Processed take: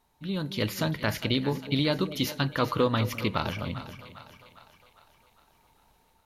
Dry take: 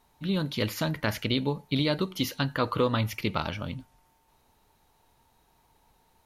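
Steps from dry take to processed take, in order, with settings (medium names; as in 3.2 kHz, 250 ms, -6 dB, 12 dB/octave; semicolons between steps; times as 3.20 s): level rider gain up to 5 dB; two-band feedback delay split 620 Hz, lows 211 ms, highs 404 ms, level -12.5 dB; trim -4.5 dB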